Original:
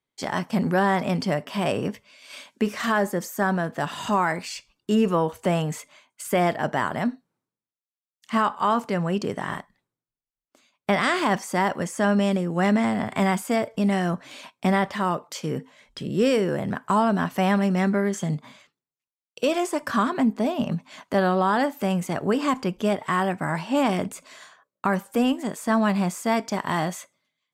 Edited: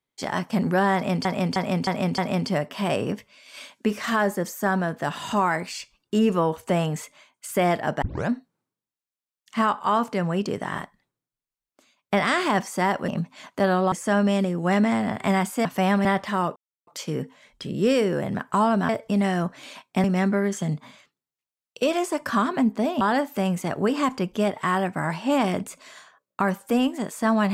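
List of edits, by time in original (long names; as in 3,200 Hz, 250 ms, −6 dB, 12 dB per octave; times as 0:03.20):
0:00.94–0:01.25: repeat, 5 plays
0:06.78: tape start 0.27 s
0:13.57–0:14.72: swap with 0:17.25–0:17.65
0:15.23: splice in silence 0.31 s
0:20.62–0:21.46: move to 0:11.84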